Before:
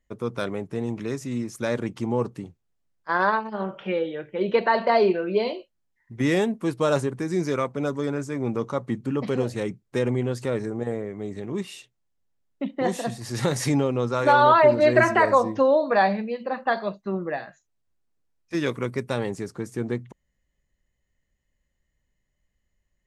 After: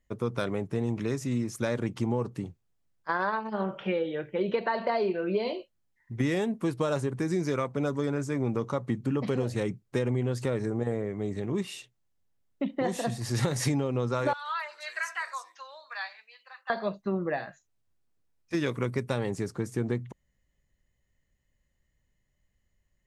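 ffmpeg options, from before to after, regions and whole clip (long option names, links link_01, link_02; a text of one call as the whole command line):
ffmpeg -i in.wav -filter_complex "[0:a]asettb=1/sr,asplit=3[link_01][link_02][link_03];[link_01]atrim=end=14.334[link_04];[link_02]atrim=start=14.33:end=16.7,asetpts=PTS-STARTPTS,afade=type=in:duration=0.004:curve=qsin,afade=type=out:start_time=2.366:duration=0.004:curve=qsin,highpass=frequency=1300:width=0.5412,highpass=frequency=1300:width=1.3066,equalizer=frequency=1800:width=0.37:gain=-9.5[link_05];[link_03]atrim=start=16.696[link_06];[link_04][link_05]acrossfade=duration=0.004:curve1=hsin:curve2=qsin[link_07];[link_07][link_06]acrossfade=duration=0.004:curve1=qsin:curve2=hsin,acompressor=threshold=-25dB:ratio=5,equalizer=frequency=110:width=1.5:gain=4" out.wav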